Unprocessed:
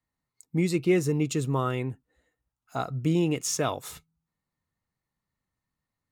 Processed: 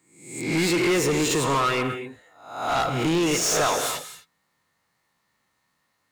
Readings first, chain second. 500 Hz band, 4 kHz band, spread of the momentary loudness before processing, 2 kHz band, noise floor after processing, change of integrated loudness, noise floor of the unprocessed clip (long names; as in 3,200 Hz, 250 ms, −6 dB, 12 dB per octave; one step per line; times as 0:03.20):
+4.5 dB, +11.5 dB, 13 LU, +11.0 dB, −73 dBFS, +4.5 dB, below −85 dBFS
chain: peak hold with a rise ahead of every peak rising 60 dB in 0.60 s
reverb whose tail is shaped and stops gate 280 ms flat, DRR 11.5 dB
mid-hump overdrive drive 26 dB, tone 6,400 Hz, clips at −11 dBFS
level −3.5 dB